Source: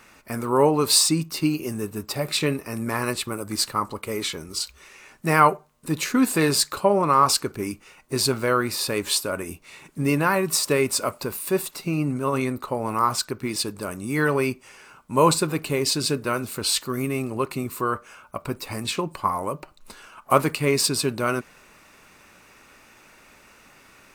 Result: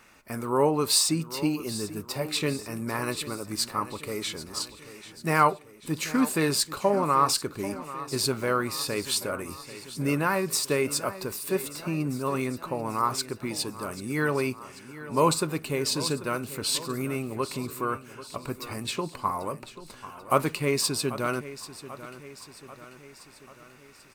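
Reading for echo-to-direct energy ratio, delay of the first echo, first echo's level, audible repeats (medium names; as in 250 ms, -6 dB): -13.5 dB, 789 ms, -15.0 dB, 4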